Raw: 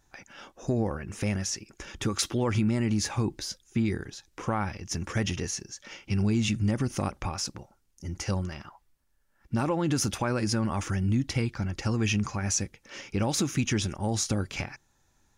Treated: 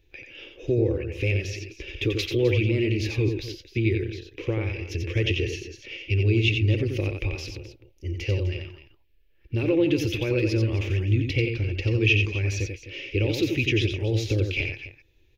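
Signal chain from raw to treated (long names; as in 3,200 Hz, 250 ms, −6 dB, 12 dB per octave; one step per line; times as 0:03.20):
drawn EQ curve 110 Hz 0 dB, 200 Hz −21 dB, 330 Hz +2 dB, 490 Hz +1 dB, 740 Hz −20 dB, 1,400 Hz −21 dB, 2,500 Hz +6 dB, 4,200 Hz −6 dB, 8,800 Hz −29 dB, 13,000 Hz −8 dB
on a send: multi-tap delay 89/258 ms −5.5/−14 dB
on the sum: level +6 dB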